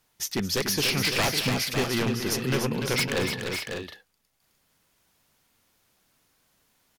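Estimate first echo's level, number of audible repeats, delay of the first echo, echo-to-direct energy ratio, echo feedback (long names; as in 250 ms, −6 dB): −14.5 dB, 4, 220 ms, −3.0 dB, repeats not evenly spaced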